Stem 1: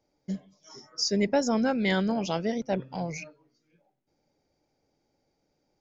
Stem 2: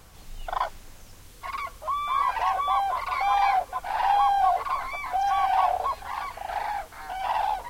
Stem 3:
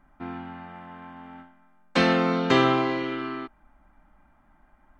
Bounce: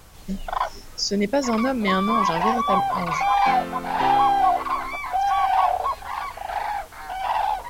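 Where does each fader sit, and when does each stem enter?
+3.0 dB, +3.0 dB, -10.0 dB; 0.00 s, 0.00 s, 1.50 s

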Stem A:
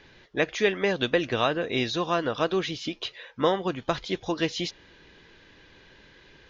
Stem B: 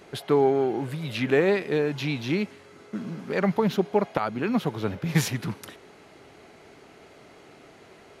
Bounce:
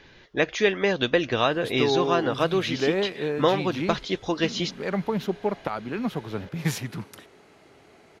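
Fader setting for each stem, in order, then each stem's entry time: +2.0 dB, -3.5 dB; 0.00 s, 1.50 s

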